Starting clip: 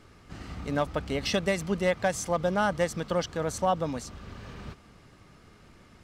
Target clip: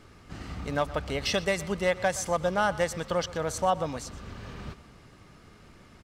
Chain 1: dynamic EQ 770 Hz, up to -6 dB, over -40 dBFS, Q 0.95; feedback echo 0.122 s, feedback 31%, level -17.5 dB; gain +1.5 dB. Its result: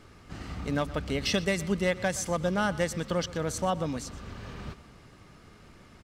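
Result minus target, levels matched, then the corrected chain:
250 Hz band +5.0 dB
dynamic EQ 240 Hz, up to -6 dB, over -40 dBFS, Q 0.95; feedback echo 0.122 s, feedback 31%, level -17.5 dB; gain +1.5 dB

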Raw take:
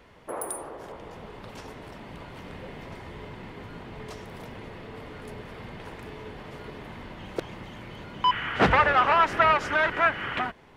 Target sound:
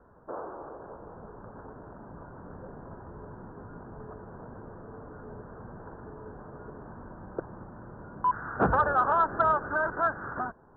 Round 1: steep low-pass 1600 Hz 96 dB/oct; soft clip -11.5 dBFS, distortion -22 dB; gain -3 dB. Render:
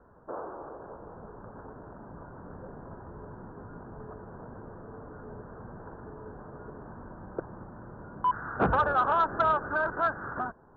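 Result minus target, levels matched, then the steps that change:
soft clip: distortion +11 dB
change: soft clip -5 dBFS, distortion -34 dB

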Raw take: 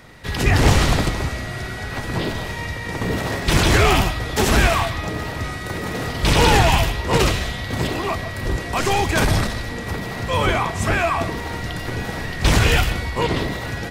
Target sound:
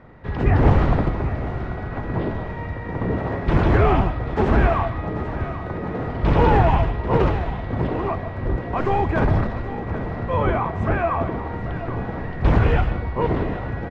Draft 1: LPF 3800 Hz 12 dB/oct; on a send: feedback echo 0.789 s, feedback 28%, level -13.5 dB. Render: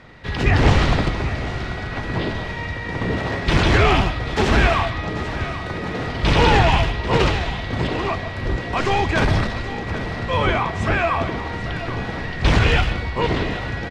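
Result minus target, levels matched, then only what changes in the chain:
4000 Hz band +14.5 dB
change: LPF 1200 Hz 12 dB/oct

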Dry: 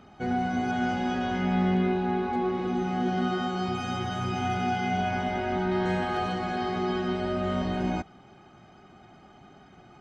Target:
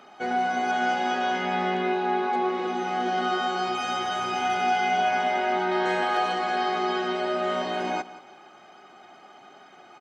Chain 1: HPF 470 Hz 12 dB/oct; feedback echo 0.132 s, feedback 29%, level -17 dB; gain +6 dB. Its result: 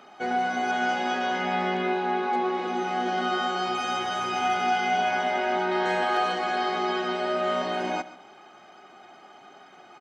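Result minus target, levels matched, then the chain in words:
echo 44 ms early
HPF 470 Hz 12 dB/oct; feedback echo 0.176 s, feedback 29%, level -17 dB; gain +6 dB

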